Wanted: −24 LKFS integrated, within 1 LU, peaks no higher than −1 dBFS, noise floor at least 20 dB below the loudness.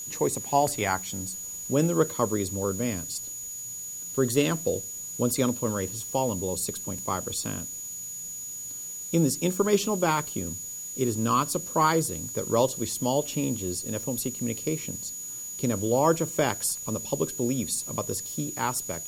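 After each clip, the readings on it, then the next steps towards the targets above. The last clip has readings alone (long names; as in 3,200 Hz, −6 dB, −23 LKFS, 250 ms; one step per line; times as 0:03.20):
interfering tone 6,800 Hz; level of the tone −35 dBFS; background noise floor −37 dBFS; target noise floor −48 dBFS; integrated loudness −27.5 LKFS; sample peak −9.0 dBFS; target loudness −24.0 LKFS
→ notch filter 6,800 Hz, Q 30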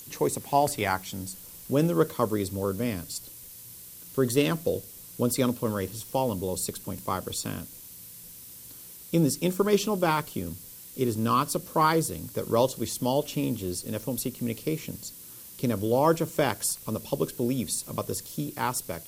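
interfering tone none found; background noise floor −46 dBFS; target noise floor −48 dBFS
→ noise reduction from a noise print 6 dB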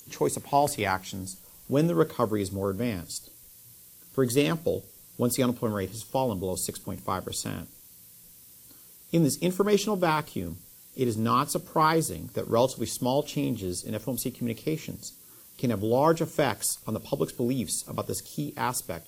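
background noise floor −52 dBFS; integrated loudness −28.0 LKFS; sample peak −9.5 dBFS; target loudness −24.0 LKFS
→ level +4 dB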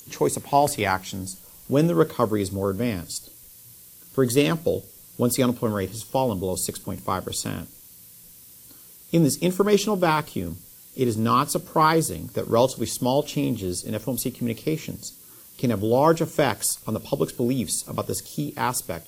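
integrated loudness −24.0 LKFS; sample peak −5.5 dBFS; background noise floor −48 dBFS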